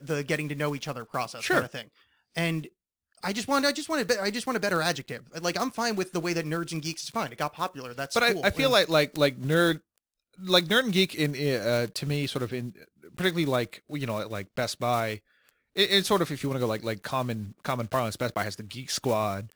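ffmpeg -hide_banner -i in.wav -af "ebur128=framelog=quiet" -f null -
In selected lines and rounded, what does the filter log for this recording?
Integrated loudness:
  I:         -27.5 LUFS
  Threshold: -37.9 LUFS
Loudness range:
  LRA:         5.9 LU
  Threshold: -47.7 LUFS
  LRA low:   -30.5 LUFS
  LRA high:  -24.6 LUFS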